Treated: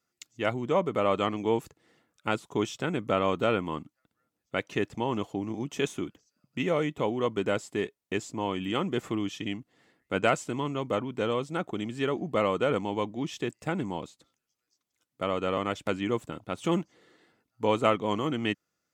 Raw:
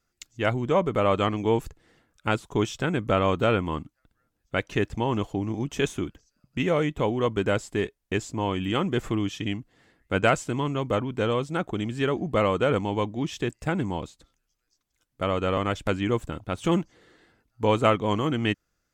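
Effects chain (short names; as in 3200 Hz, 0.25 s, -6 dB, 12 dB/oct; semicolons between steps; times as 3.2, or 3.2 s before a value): HPF 150 Hz 12 dB/oct; notch 1600 Hz, Q 13; gain -3 dB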